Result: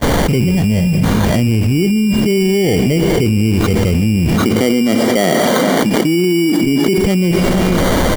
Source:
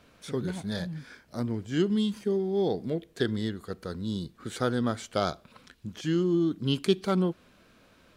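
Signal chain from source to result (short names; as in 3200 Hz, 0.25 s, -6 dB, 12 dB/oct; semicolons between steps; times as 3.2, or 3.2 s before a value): switching spikes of -18 dBFS; 4.35–6.98 HPF 210 Hz 24 dB/oct; gate -31 dBFS, range -56 dB; LPF 1000 Hz 24 dB/oct; tilt -4 dB/oct; sample-and-hold 17×; outdoor echo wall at 80 m, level -25 dB; reverb RT60 1.1 s, pre-delay 14 ms, DRR 16 dB; maximiser +25 dB; fast leveller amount 100%; gain -8 dB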